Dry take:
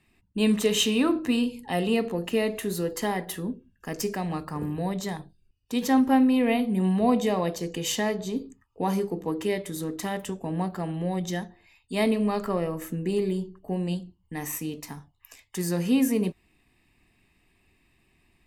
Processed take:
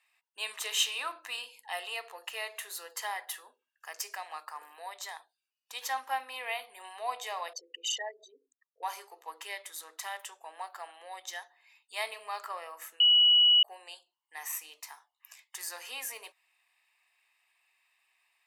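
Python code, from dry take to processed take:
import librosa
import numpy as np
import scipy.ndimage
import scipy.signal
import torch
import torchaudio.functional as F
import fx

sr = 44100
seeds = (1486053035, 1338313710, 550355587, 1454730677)

y = fx.envelope_sharpen(x, sr, power=3.0, at=(7.53, 8.83))
y = fx.edit(y, sr, fx.bleep(start_s=13.0, length_s=0.63, hz=2930.0, db=-15.0), tone=tone)
y = scipy.signal.sosfilt(scipy.signal.cheby2(4, 70, 180.0, 'highpass', fs=sr, output='sos'), y)
y = F.gain(torch.from_numpy(y), -3.0).numpy()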